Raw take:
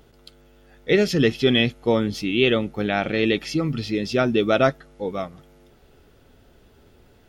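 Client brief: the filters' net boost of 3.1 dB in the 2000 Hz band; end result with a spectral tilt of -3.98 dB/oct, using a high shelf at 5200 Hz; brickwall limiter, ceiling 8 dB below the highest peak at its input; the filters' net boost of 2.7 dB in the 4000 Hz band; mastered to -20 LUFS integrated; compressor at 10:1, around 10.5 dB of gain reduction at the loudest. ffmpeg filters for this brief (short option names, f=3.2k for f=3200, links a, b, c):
-af "equalizer=f=2k:t=o:g=3.5,equalizer=f=4k:t=o:g=3.5,highshelf=f=5.2k:g=-3.5,acompressor=threshold=-23dB:ratio=10,volume=10.5dB,alimiter=limit=-9dB:level=0:latency=1"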